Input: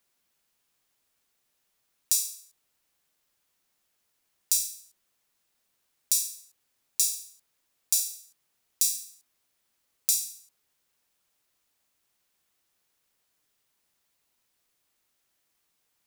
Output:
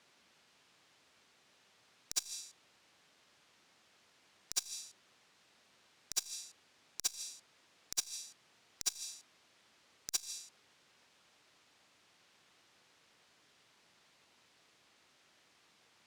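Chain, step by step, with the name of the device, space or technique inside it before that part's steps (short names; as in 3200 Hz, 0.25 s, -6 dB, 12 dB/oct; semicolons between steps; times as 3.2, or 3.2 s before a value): valve radio (BPF 100–4800 Hz; tube stage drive 36 dB, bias 0.25; core saturation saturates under 2200 Hz); gain +13.5 dB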